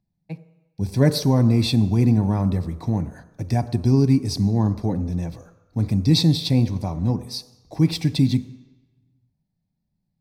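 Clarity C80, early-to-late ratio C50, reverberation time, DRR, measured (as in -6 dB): 15.5 dB, 14.0 dB, 1.0 s, 10.5 dB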